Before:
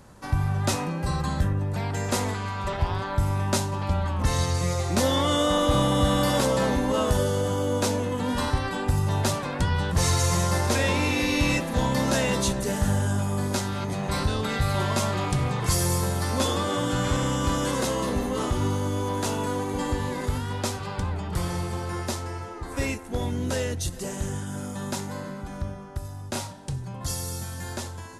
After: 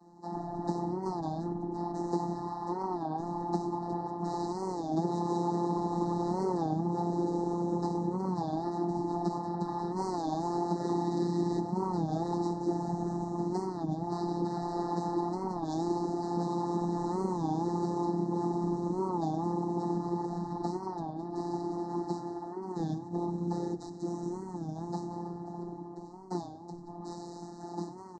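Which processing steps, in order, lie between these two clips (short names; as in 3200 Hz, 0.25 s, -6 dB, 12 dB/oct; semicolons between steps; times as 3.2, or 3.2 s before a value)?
tracing distortion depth 0.29 ms; noise vocoder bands 12; vowel filter u; tone controls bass -8 dB, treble +12 dB; frequency shift -58 Hz; Chebyshev band-stop 1800–3900 Hz, order 5; robotiser 173 Hz; compressor, threshold -41 dBFS, peak gain reduction 7 dB; bell 420 Hz +15 dB 1.5 oct; frequency-shifting echo 96 ms, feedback 32%, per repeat -34 Hz, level -17 dB; record warp 33 1/3 rpm, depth 160 cents; gain +8 dB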